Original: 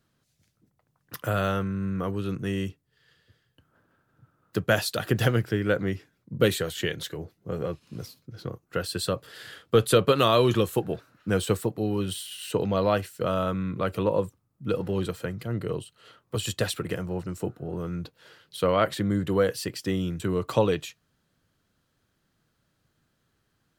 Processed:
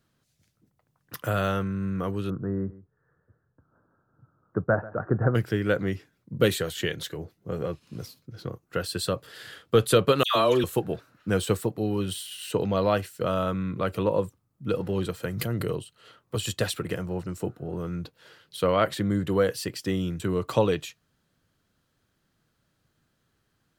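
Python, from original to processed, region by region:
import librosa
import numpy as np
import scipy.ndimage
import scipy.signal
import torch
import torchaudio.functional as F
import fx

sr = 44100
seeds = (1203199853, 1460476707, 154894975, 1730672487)

y = fx.chain(x, sr, fx.steep_lowpass(hz=1500.0, slope=48),
    fx.echo_single(ms=139, db=-18.5), at=(2.3, 5.35))
y = fx.chain(y, sr, fx.highpass(hz=170.0, slope=12),
    fx.dispersion(late='lows', ms=124.0, hz=1500.0), at=(10.23, 10.64))
y = fx.chain(y, sr, fx.high_shelf(hz=7900.0, db=11.0),
    fx.pre_swell(db_per_s=26.0), at=(15.23, 15.76))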